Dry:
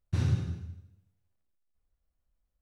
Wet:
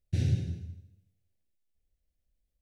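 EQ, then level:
Butterworth band-reject 1,100 Hz, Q 0.96
0.0 dB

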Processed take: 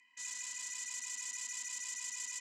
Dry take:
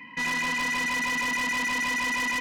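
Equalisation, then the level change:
resonant band-pass 7,300 Hz, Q 7.4
+6.0 dB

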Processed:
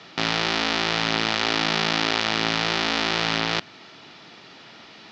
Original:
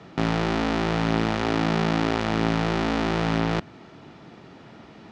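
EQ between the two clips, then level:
low-pass filter 5,100 Hz 24 dB per octave
spectral tilt +3 dB per octave
high-shelf EQ 3,000 Hz +11 dB
0.0 dB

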